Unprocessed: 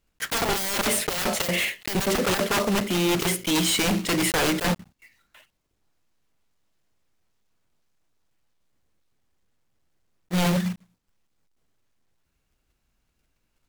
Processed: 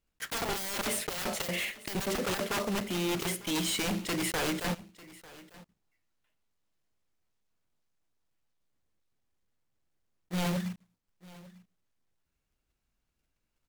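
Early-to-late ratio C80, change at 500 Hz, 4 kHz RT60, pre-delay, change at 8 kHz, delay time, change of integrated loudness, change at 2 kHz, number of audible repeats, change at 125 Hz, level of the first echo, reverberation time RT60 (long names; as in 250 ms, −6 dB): no reverb audible, −8.5 dB, no reverb audible, no reverb audible, −8.5 dB, 897 ms, −8.5 dB, −8.5 dB, 1, −8.5 dB, −20.5 dB, no reverb audible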